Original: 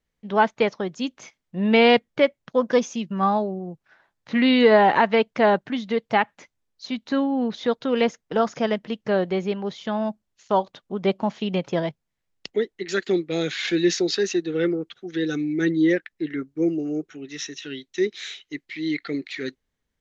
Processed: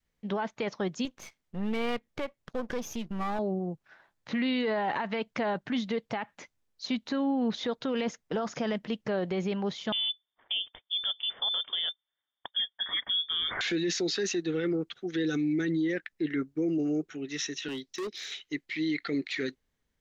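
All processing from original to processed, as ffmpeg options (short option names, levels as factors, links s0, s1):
-filter_complex "[0:a]asettb=1/sr,asplit=3[s0][s1][s2];[s0]atrim=end=1.054[s3];[s1]atrim=start=1.05:end=3.39,asetpts=PTS-STARTPTS,afade=t=in:d=0.004:c=qsin,afade=t=out:st=2.336:d=0.004:c=qsin,aeval=exprs='if(lt(val(0),0),0.251*val(0),val(0))':c=same,acompressor=threshold=0.0251:ratio=2:attack=3.2:release=140:knee=1:detection=peak[s4];[s2]atrim=start=3.386[s5];[s3][s4]acrossfade=d=0.004:c1=hsin:c2=qsin[s6];[s6][s5]acrossfade=d=0.004:c1=qsin:c2=hsin,asettb=1/sr,asplit=3[s7][s8][s9];[s7]atrim=end=9.924[s10];[s8]atrim=start=9.92:end=13.61,asetpts=PTS-STARTPTS,afade=t=in:d=0.004:c=qsin,afade=t=out:st=3.686:d=0.004:c=qsin,highpass=85,equalizer=f=1100:w=2:g=-12,lowpass=f=3100:t=q:w=0.5098,lowpass=f=3100:t=q:w=0.6013,lowpass=f=3100:t=q:w=0.9,lowpass=f=3100:t=q:w=2.563,afreqshift=-3700[s11];[s9]atrim=start=13.606[s12];[s10][s11]acrossfade=d=0.004:c1=hsin:c2=qsin[s13];[s13][s12]acrossfade=d=0.004:c1=qsin:c2=hsin,asettb=1/sr,asplit=3[s14][s15][s16];[s14]atrim=end=17.684[s17];[s15]atrim=start=17.68:end=18.32,asetpts=PTS-STARTPTS,afade=t=in:d=0.004:c=qsin,afade=t=out:st=0.636:d=0.004:c=qsin,equalizer=f=5200:w=2.5:g=9.5,acrossover=split=260|790|1600[s18][s19][s20][s21];[s18]acompressor=threshold=0.01:ratio=3[s22];[s19]acompressor=threshold=0.0562:ratio=3[s23];[s20]acompressor=threshold=0.002:ratio=3[s24];[s21]acompressor=threshold=0.00891:ratio=3[s25];[s22][s23][s24][s25]amix=inputs=4:normalize=0,asoftclip=type=hard:threshold=0.0251[s26];[s16]atrim=start=18.316[s27];[s17][s26]acrossfade=d=0.004:c1=hsin:c2=qsin[s28];[s28][s27]acrossfade=d=0.004:c1=qsin:c2=hsin,adynamicequalizer=threshold=0.0282:dfrequency=440:dqfactor=1.1:tfrequency=440:tqfactor=1.1:attack=5:release=100:ratio=0.375:range=2:mode=cutabove:tftype=bell,acompressor=threshold=0.1:ratio=4,alimiter=limit=0.075:level=0:latency=1:release=16"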